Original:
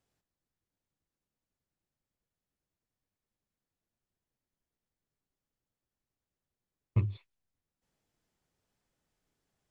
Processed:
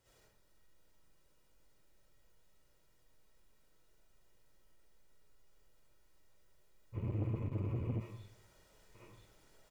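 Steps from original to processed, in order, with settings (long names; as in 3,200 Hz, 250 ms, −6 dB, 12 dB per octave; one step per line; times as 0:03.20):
feedback echo with a high-pass in the loop 991 ms, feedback 64%, high-pass 300 Hz, level −24 dB
downward compressor, threshold −34 dBFS, peak gain reduction 12 dB
brickwall limiter −33 dBFS, peak gain reduction 9 dB
comb filter 2.1 ms, depth 45%
convolution reverb RT60 0.70 s, pre-delay 20 ms, DRR −10.5 dB
frozen spectrum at 0:06.97, 1.04 s
saturating transformer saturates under 290 Hz
level +5.5 dB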